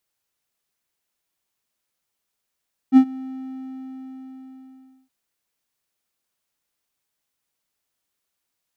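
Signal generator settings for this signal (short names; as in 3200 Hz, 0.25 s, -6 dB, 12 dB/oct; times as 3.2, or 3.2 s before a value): ADSR triangle 262 Hz, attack 47 ms, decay 77 ms, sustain -23.5 dB, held 0.21 s, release 1.96 s -3.5 dBFS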